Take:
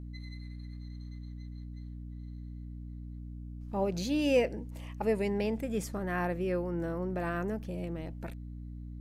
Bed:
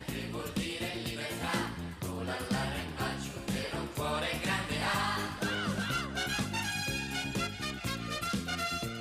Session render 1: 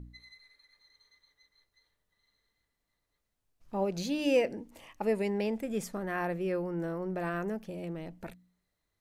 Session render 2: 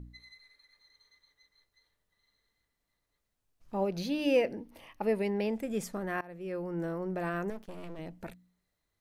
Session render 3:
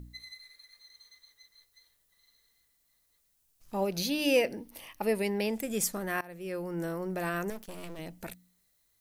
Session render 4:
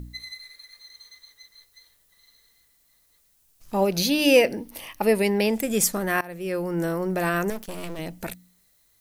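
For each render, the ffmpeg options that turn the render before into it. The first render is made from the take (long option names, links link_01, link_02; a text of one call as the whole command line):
ffmpeg -i in.wav -af "bandreject=frequency=60:width_type=h:width=4,bandreject=frequency=120:width_type=h:width=4,bandreject=frequency=180:width_type=h:width=4,bandreject=frequency=240:width_type=h:width=4,bandreject=frequency=300:width_type=h:width=4" out.wav
ffmpeg -i in.wav -filter_complex "[0:a]asettb=1/sr,asplit=3[link_01][link_02][link_03];[link_01]atrim=end=3.874[link_04];[link_02]atrim=start=3.87:end=5.5,asetpts=PTS-STARTPTS,afade=type=in:duration=0.004:curve=qsin,afade=type=out:start_time=1.626:duration=0.004:curve=qsin,equalizer=frequency=7300:width=3.2:gain=-14[link_05];[link_03]atrim=start=5.496[link_06];[link_04][link_05]acrossfade=duration=0.004:curve1=hsin:curve2=qsin[link_07];[link_07][link_06]acrossfade=duration=0.004:curve1=qsin:curve2=hsin,asettb=1/sr,asplit=3[link_08][link_09][link_10];[link_08]atrim=end=7.504[link_11];[link_09]atrim=start=7.5:end=7.99,asetpts=PTS-STARTPTS,afade=type=in:duration=0.004:curve=qsin,afade=type=out:start_time=0.486:duration=0.004:curve=qsin,aeval=exprs='max(val(0),0)':channel_layout=same[link_12];[link_10]atrim=start=7.986[link_13];[link_11][link_12]acrossfade=duration=0.004:curve1=hsin:curve2=qsin[link_14];[link_14][link_13]acrossfade=duration=0.004:curve1=qsin:curve2=hsin,asplit=2[link_15][link_16];[link_15]atrim=end=6.21,asetpts=PTS-STARTPTS,afade=type=out:start_time=6.206:duration=0.004:curve=hsin:silence=0.0707946[link_17];[link_16]atrim=start=6.21,asetpts=PTS-STARTPTS,afade=type=in:duration=0.59:silence=0.0707946[link_18];[link_17][link_18]concat=n=2:v=0:a=1" out.wav
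ffmpeg -i in.wav -af "crystalizer=i=4:c=0" out.wav
ffmpeg -i in.wav -af "volume=8.5dB" out.wav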